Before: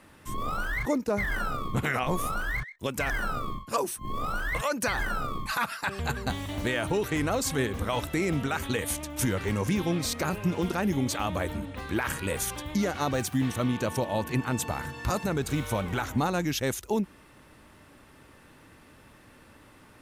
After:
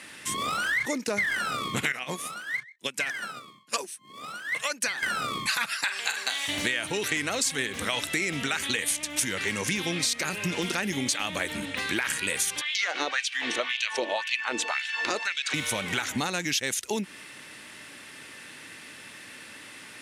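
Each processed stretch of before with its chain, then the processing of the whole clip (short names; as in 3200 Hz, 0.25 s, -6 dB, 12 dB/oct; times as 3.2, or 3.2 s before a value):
1.92–5.03 HPF 120 Hz 24 dB/oct + upward expander 2.5:1, over -37 dBFS
5.84–6.48 HPF 700 Hz + flutter echo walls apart 7.8 m, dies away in 0.32 s
12.61–15.54 LPF 4700 Hz + LFO high-pass sine 1.9 Hz 320–3000 Hz
whole clip: HPF 160 Hz 12 dB/oct; band shelf 4200 Hz +13 dB 3 oct; compressor 4:1, threshold -29 dBFS; gain +3 dB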